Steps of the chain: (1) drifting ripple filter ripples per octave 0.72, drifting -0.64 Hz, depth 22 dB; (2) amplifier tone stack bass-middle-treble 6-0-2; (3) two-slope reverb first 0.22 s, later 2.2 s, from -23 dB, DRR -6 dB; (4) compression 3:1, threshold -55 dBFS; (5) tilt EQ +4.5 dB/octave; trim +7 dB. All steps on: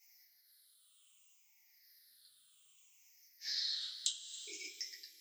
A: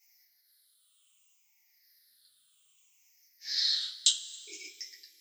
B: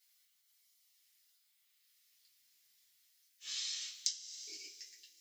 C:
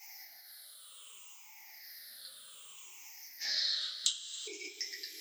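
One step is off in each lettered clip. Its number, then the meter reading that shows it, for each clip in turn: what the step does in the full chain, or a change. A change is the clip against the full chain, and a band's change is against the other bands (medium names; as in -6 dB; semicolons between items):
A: 4, mean gain reduction 4.0 dB; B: 1, crest factor change +3.5 dB; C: 2, momentary loudness spread change +9 LU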